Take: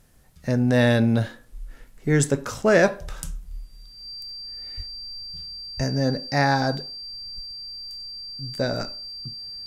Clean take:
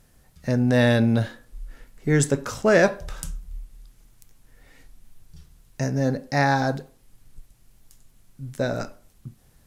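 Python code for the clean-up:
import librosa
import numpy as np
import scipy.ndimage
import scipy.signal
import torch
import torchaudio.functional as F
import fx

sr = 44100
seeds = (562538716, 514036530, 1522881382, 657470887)

y = fx.notch(x, sr, hz=4700.0, q=30.0)
y = fx.highpass(y, sr, hz=140.0, slope=24, at=(4.76, 4.88), fade=0.02)
y = fx.highpass(y, sr, hz=140.0, slope=24, at=(5.76, 5.88), fade=0.02)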